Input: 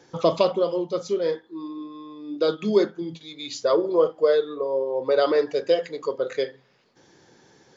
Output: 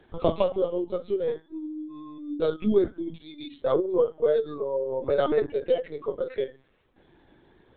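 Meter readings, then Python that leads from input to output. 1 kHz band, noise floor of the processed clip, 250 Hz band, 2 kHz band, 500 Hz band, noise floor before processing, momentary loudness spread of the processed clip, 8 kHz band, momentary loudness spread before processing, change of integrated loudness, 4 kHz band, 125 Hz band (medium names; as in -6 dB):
-5.0 dB, -62 dBFS, -1.5 dB, -6.5 dB, -3.5 dB, -59 dBFS, 13 LU, no reading, 15 LU, -3.5 dB, -9.5 dB, 0.0 dB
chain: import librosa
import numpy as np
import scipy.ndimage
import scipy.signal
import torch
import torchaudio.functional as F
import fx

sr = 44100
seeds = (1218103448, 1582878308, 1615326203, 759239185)

y = fx.peak_eq(x, sr, hz=230.0, db=6.5, octaves=1.0)
y = fx.lpc_vocoder(y, sr, seeds[0], excitation='pitch_kept', order=16)
y = y * librosa.db_to_amplitude(-4.5)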